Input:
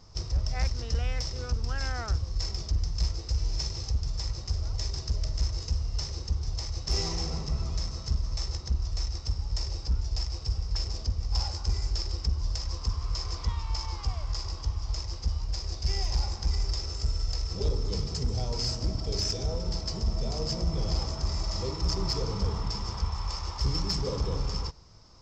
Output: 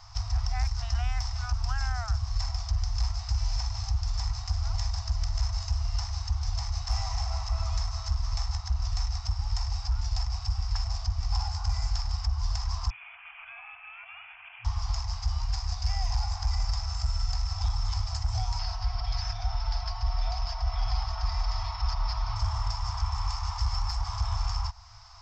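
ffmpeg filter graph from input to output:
ffmpeg -i in.wav -filter_complex "[0:a]asettb=1/sr,asplit=3[link_01][link_02][link_03];[link_01]atrim=end=12.904[link_04];[link_02]atrim=start=12.9:end=14.65,asetpts=PTS-STARTPTS,afade=type=in:duration=0.004:curve=qsin,afade=type=out:start_time=1.746:duration=0.004:curve=qsin,highpass=800,acompressor=threshold=-40dB:ratio=6:attack=3.2:release=140:knee=1:detection=peak,lowpass=frequency=3000:width_type=q:width=0.5098,lowpass=frequency=3000:width_type=q:width=0.6013,lowpass=frequency=3000:width_type=q:width=0.9,lowpass=frequency=3000:width_type=q:width=2.563,afreqshift=-3500[link_05];[link_03]atrim=start=14.646[link_06];[link_04][link_05]acrossfade=duration=0.004:curve1=hsin:curve2=qsin[link_07];[link_07][link_06]acrossfade=duration=0.004:curve1=qsin:curve2=hsin,asettb=1/sr,asplit=3[link_08][link_09][link_10];[link_08]atrim=end=18.594[link_11];[link_09]atrim=start=18.59:end=22.36,asetpts=PTS-STARTPTS,afade=type=in:duration=0.004:curve=qsin,afade=type=out:start_time=3.766:duration=0.004:curve=qsin,lowpass=frequency=4600:width=0.5412,lowpass=frequency=4600:width=1.3066,aecho=1:1:5.5:0.52,atrim=end_sample=166257[link_12];[link_10]atrim=start=22.356[link_13];[link_11][link_12]acrossfade=duration=0.004:curve1=hsin:curve2=qsin[link_14];[link_14][link_13]acrossfade=duration=0.004:curve1=qsin:curve2=hsin,afftfilt=real='re*(1-between(b*sr/4096,110,650))':imag='im*(1-between(b*sr/4096,110,650))':win_size=4096:overlap=0.75,equalizer=frequency=1400:width=0.44:gain=6.5,acrossover=split=300|1200|5200[link_15][link_16][link_17][link_18];[link_15]acompressor=threshold=-27dB:ratio=4[link_19];[link_16]acompressor=threshold=-43dB:ratio=4[link_20];[link_17]acompressor=threshold=-50dB:ratio=4[link_21];[link_18]acompressor=threshold=-46dB:ratio=4[link_22];[link_19][link_20][link_21][link_22]amix=inputs=4:normalize=0,volume=3.5dB" out.wav

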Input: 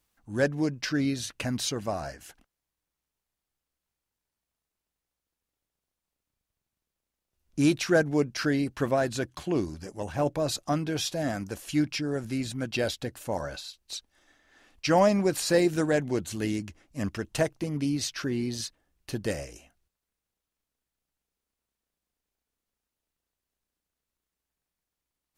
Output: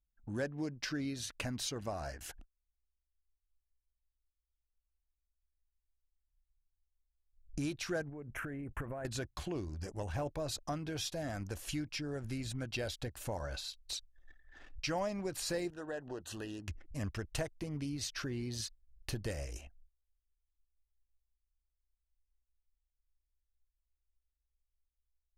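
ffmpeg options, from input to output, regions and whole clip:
ffmpeg -i in.wav -filter_complex "[0:a]asettb=1/sr,asplit=3[link_01][link_02][link_03];[link_01]atrim=end=8.094[link_04];[link_02]atrim=start=8.09:end=9.05,asetpts=PTS-STARTPTS,afade=type=in:duration=0.004:curve=qsin,afade=type=out:start_time=0.956:duration=0.004:curve=qsin,asuperstop=centerf=4600:order=4:qfactor=0.65,acompressor=threshold=-33dB:ratio=12:attack=3.2:release=140:knee=1:detection=peak[link_05];[link_03]atrim=start=9.046[link_06];[link_04][link_05]acrossfade=duration=0.004:curve1=hsin:curve2=qsin[link_07];[link_07][link_06]acrossfade=duration=0.004:curve1=qsin:curve2=hsin,asettb=1/sr,asplit=3[link_08][link_09][link_10];[link_08]atrim=end=15.704[link_11];[link_09]atrim=start=15.7:end=16.68,asetpts=PTS-STARTPTS,afade=type=in:duration=0.004:curve=qsin,afade=type=out:start_time=0.976:duration=0.004:curve=qsin,bass=frequency=250:gain=-13,treble=frequency=4000:gain=-8,acompressor=threshold=-41dB:ratio=1.5:attack=3.2:release=140:knee=1:detection=peak,asuperstop=centerf=2200:order=8:qfactor=4.1[link_12];[link_10]atrim=start=16.676[link_13];[link_11][link_12]acrossfade=duration=0.004:curve1=hsin:curve2=qsin[link_14];[link_14][link_13]acrossfade=duration=0.004:curve1=qsin:curve2=hsin,acompressor=threshold=-46dB:ratio=2.5,anlmdn=0.0001,asubboost=boost=4.5:cutoff=86,volume=4dB" out.wav

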